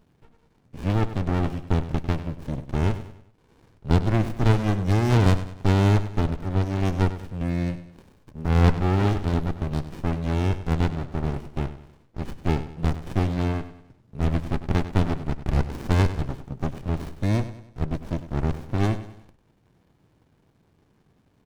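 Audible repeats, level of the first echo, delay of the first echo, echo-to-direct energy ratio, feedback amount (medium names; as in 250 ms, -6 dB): 4, -13.0 dB, 98 ms, -12.0 dB, 43%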